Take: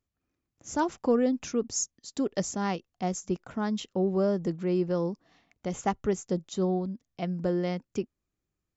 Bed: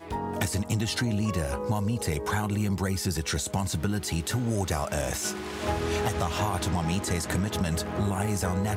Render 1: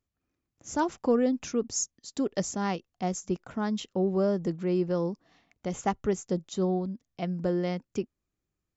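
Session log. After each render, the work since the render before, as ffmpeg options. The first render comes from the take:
-af anull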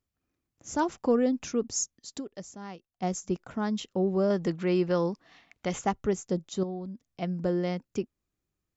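-filter_complex "[0:a]asettb=1/sr,asplit=3[a][b][c];[a]atrim=end=4.304[d];[b]atrim=start=4.3:end=5.79,asetpts=PTS-STARTPTS,afade=t=in:d=0.004:c=qsin,afade=t=out:st=1.486:d=0.004:c=qsin,equalizer=f=2.3k:t=o:w=3:g=9[e];[c]atrim=start=5.786[f];[d][e]acrossfade=d=0.004:c1=hsin:c2=qsin[g];[g][f]acrossfade=d=0.004:c1=qsin:c2=hsin,asettb=1/sr,asplit=3[h][i][j];[h]atrim=end=6.634[k];[i]atrim=start=6.63:end=7.21,asetpts=PTS-STARTPTS,afade=t=in:d=0.004:c=qsin,afade=t=out:st=0.576:d=0.004:c=qsin,acompressor=threshold=-39dB:ratio=2:attack=3.2:release=140:knee=1:detection=peak[l];[j]atrim=start=7.206[m];[k][l]acrossfade=d=0.004:c1=hsin:c2=qsin[n];[n][m]acrossfade=d=0.004:c1=qsin:c2=hsin,asplit=3[o][p][q];[o]atrim=end=2.34,asetpts=PTS-STARTPTS,afade=t=out:st=2.18:d=0.16:c=exp:silence=0.251189[r];[p]atrim=start=2.34:end=2.87,asetpts=PTS-STARTPTS,volume=-12dB[s];[q]atrim=start=2.87,asetpts=PTS-STARTPTS,afade=t=in:d=0.16:c=exp:silence=0.251189[t];[r][s][t]concat=n=3:v=0:a=1"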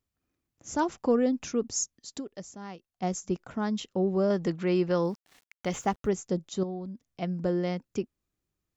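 -filter_complex "[0:a]asettb=1/sr,asplit=3[a][b][c];[a]atrim=end=5.024[d];[b]atrim=start=5.02:end=6.09,asetpts=PTS-STARTPTS,afade=t=in:d=0.004:c=qsin,afade=t=out:st=1.066:d=0.004:c=qsin,aeval=exprs='val(0)*gte(abs(val(0)),0.00251)':c=same[e];[c]atrim=start=6.086[f];[d][e]acrossfade=d=0.004:c1=hsin:c2=qsin[g];[g][f]acrossfade=d=0.004:c1=qsin:c2=hsin"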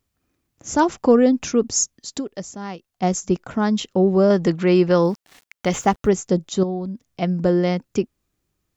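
-af "volume=10dB"

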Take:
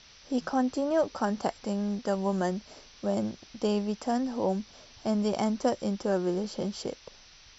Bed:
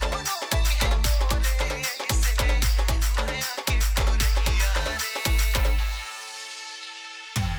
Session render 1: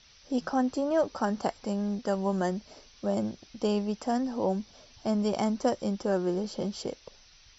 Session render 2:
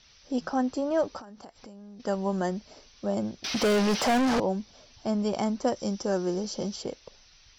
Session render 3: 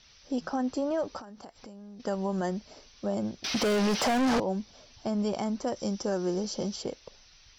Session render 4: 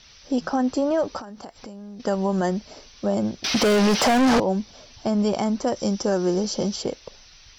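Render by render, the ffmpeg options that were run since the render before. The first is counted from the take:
-af "afftdn=nr=6:nf=-54"
-filter_complex "[0:a]asettb=1/sr,asplit=3[a][b][c];[a]atrim=end=1.194[d];[b]atrim=start=1.19:end=2,asetpts=PTS-STARTPTS,afade=t=in:d=0.004:c=qsin,afade=t=out:st=0.806:d=0.004:c=qsin,acompressor=threshold=-42dB:ratio=20:attack=3.2:release=140:knee=1:detection=peak[e];[c]atrim=start=1.996[f];[d][e]acrossfade=d=0.004:c1=hsin:c2=qsin[g];[g][f]acrossfade=d=0.004:c1=qsin:c2=hsin,asettb=1/sr,asplit=3[h][i][j];[h]atrim=end=3.444[k];[i]atrim=start=3.44:end=4.4,asetpts=PTS-STARTPTS,afade=t=in:d=0.004:c=qsin,afade=t=out:st=0.956:d=0.004:c=qsin,asplit=2[l][m];[m]highpass=f=720:p=1,volume=36dB,asoftclip=type=tanh:threshold=-17dB[n];[l][n]amix=inputs=2:normalize=0,lowpass=f=4.1k:p=1,volume=-6dB[o];[j]atrim=start=4.396[p];[k][o]acrossfade=d=0.004:c1=hsin:c2=qsin[q];[q][p]acrossfade=d=0.004:c1=qsin:c2=hsin,asettb=1/sr,asplit=3[r][s][t];[r]atrim=end=5.764[u];[s]atrim=start=5.76:end=6.76,asetpts=PTS-STARTPTS,afade=t=in:d=0.004:c=qsin,afade=t=out:st=0.996:d=0.004:c=qsin,equalizer=f=6k:t=o:w=0.67:g=10[v];[t]atrim=start=6.756[w];[u][v]acrossfade=d=0.004:c1=hsin:c2=qsin[x];[x][w]acrossfade=d=0.004:c1=qsin:c2=hsin"
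-af "alimiter=limit=-21dB:level=0:latency=1:release=89"
-af "volume=7.5dB"

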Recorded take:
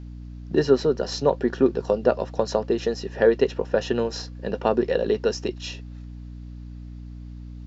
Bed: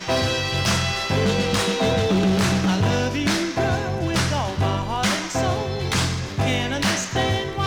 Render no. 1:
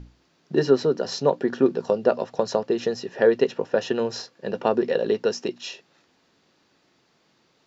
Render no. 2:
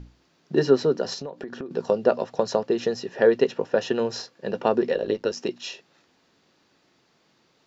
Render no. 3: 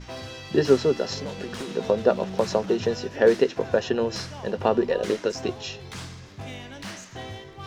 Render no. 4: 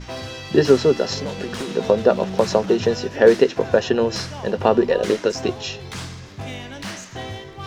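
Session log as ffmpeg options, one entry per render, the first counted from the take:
-af "bandreject=f=60:t=h:w=6,bandreject=f=120:t=h:w=6,bandreject=f=180:t=h:w=6,bandreject=f=240:t=h:w=6,bandreject=f=300:t=h:w=6"
-filter_complex "[0:a]asettb=1/sr,asplit=3[a][b][c];[a]atrim=end=1.134[d];[b]atrim=start=1.13:end=1.71,asetpts=PTS-STARTPTS,afade=t=in:d=0.004:c=qsin,afade=t=out:st=0.576:d=0.004:c=qsin,acompressor=threshold=-30dB:ratio=16:attack=3.2:release=140:knee=1:detection=peak[e];[c]atrim=start=1.706[f];[d][e]acrossfade=d=0.004:c1=hsin:c2=qsin[g];[g][f]acrossfade=d=0.004:c1=qsin:c2=hsin,asettb=1/sr,asplit=3[h][i][j];[h]atrim=end=4.954[k];[i]atrim=start=4.95:end=5.37,asetpts=PTS-STARTPTS,afade=t=in:d=0.004:c=qsin,afade=t=out:st=0.416:d=0.004:c=qsin,tremolo=f=100:d=0.71[l];[j]atrim=start=5.366[m];[k][l]acrossfade=d=0.004:c1=hsin:c2=qsin[n];[n][m]acrossfade=d=0.004:c1=qsin:c2=hsin"
-filter_complex "[1:a]volume=-16dB[a];[0:a][a]amix=inputs=2:normalize=0"
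-af "volume=5.5dB,alimiter=limit=-2dB:level=0:latency=1"

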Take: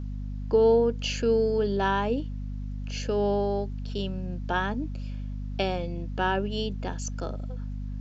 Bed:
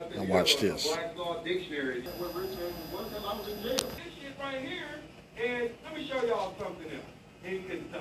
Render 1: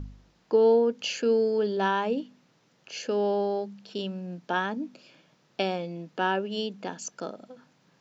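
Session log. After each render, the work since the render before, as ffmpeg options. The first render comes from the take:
-af "bandreject=f=50:t=h:w=4,bandreject=f=100:t=h:w=4,bandreject=f=150:t=h:w=4,bandreject=f=200:t=h:w=4,bandreject=f=250:t=h:w=4"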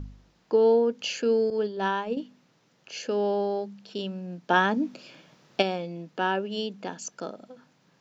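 -filter_complex "[0:a]asettb=1/sr,asplit=3[a][b][c];[a]atrim=end=1.504[d];[b]atrim=start=1.5:end=2.17,asetpts=PTS-STARTPTS,afade=t=in:d=0.004:c=qsin,afade=t=out:st=0.666:d=0.004:c=qsin,agate=range=-33dB:threshold=-24dB:ratio=3:release=100:detection=peak[e];[c]atrim=start=2.166[f];[d][e]acrossfade=d=0.004:c1=hsin:c2=qsin[g];[g][f]acrossfade=d=0.004:c1=qsin:c2=hsin,asplit=3[h][i][j];[h]afade=t=out:st=4.49:d=0.02[k];[i]acontrast=67,afade=t=in:st=4.49:d=0.02,afade=t=out:st=5.61:d=0.02[l];[j]afade=t=in:st=5.61:d=0.02[m];[k][l][m]amix=inputs=3:normalize=0"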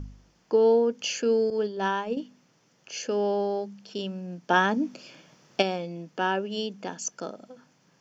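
-af "equalizer=f=6k:t=o:w=0.51:g=6,bandreject=f=3.9k:w=8.9"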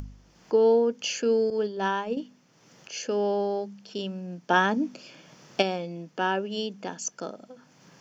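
-af "acompressor=mode=upward:threshold=-43dB:ratio=2.5"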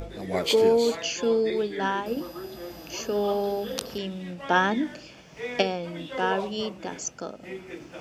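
-filter_complex "[1:a]volume=-2dB[a];[0:a][a]amix=inputs=2:normalize=0"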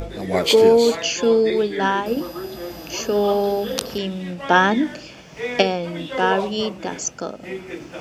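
-af "volume=7dB,alimiter=limit=-1dB:level=0:latency=1"

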